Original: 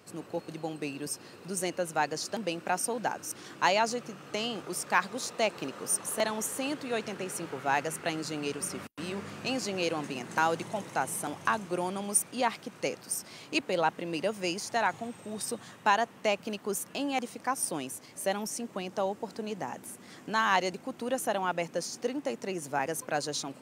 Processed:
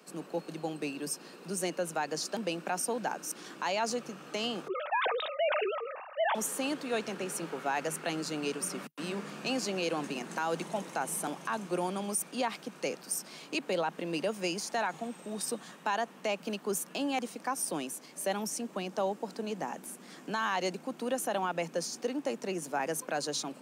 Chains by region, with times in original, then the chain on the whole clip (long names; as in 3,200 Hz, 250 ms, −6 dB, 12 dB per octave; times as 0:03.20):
0:04.68–0:06.35: three sine waves on the formant tracks + notch filter 1,400 Hz, Q 14 + level that may fall only so fast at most 44 dB per second
whole clip: Butterworth high-pass 150 Hz 72 dB per octave; notch filter 2,000 Hz, Q 21; brickwall limiter −22 dBFS